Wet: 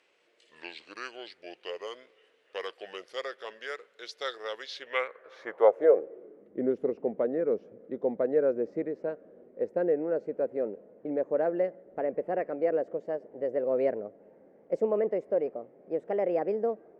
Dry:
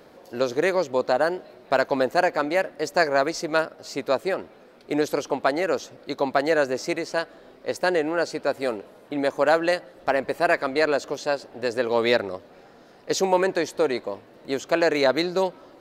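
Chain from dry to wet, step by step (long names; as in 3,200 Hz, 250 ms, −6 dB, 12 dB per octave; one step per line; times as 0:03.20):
gliding playback speed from 63% → 123%
graphic EQ with 10 bands 125 Hz −5 dB, 250 Hz −8 dB, 500 Hz +11 dB, 1,000 Hz −5 dB, 2,000 Hz +7 dB, 4,000 Hz −10 dB, 8,000 Hz −3 dB
band-pass filter sweep 4,300 Hz → 210 Hz, 0:04.60–0:06.52
level +3 dB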